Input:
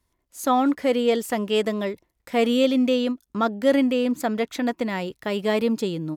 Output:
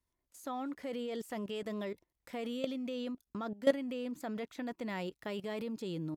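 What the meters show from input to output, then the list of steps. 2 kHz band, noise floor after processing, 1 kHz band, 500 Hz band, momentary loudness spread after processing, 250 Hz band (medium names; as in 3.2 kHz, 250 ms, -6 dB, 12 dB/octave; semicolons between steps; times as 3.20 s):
-15.0 dB, under -85 dBFS, -18.0 dB, -15.0 dB, 9 LU, -16.0 dB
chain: level held to a coarse grid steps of 16 dB; trim -6 dB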